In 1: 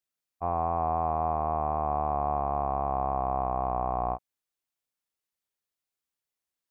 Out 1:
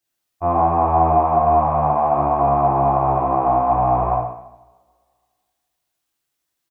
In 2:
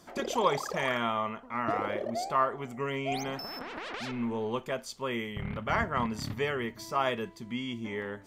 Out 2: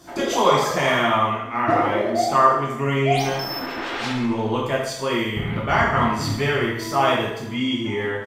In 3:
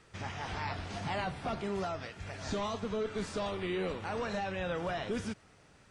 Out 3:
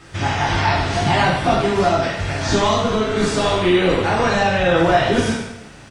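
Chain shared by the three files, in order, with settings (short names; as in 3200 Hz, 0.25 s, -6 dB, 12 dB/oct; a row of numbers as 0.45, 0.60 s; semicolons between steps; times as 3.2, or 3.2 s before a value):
on a send: feedback echo 73 ms, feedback 55%, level -13 dB; on the sum: two-slope reverb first 0.66 s, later 2 s, from -25 dB, DRR -4.5 dB; normalise peaks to -3 dBFS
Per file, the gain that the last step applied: +5.5, +5.0, +13.5 dB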